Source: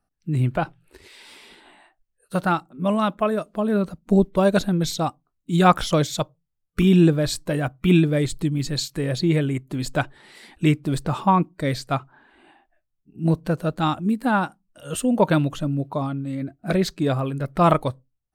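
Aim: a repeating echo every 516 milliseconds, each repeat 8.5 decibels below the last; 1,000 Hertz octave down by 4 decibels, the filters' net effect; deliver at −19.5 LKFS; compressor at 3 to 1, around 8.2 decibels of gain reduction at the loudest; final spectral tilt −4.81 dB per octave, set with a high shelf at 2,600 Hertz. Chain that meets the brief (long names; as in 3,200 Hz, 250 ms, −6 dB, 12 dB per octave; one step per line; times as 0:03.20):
parametric band 1,000 Hz −7 dB
high-shelf EQ 2,600 Hz +9 dB
downward compressor 3 to 1, threshold −23 dBFS
repeating echo 516 ms, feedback 38%, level −8.5 dB
level +7.5 dB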